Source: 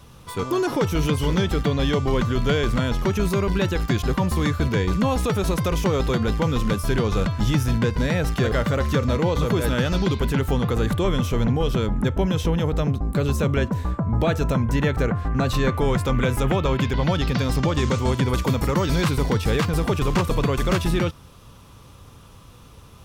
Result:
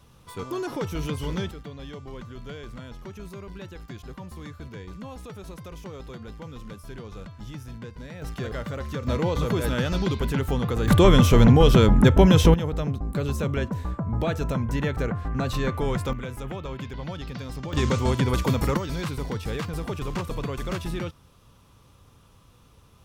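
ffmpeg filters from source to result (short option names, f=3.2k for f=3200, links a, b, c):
-af "asetnsamples=n=441:p=0,asendcmd='1.51 volume volume -18dB;8.22 volume volume -10.5dB;9.07 volume volume -3.5dB;10.88 volume volume 6.5dB;12.54 volume volume -5dB;16.13 volume volume -13dB;17.73 volume volume -1.5dB;18.77 volume volume -9dB',volume=-8dB"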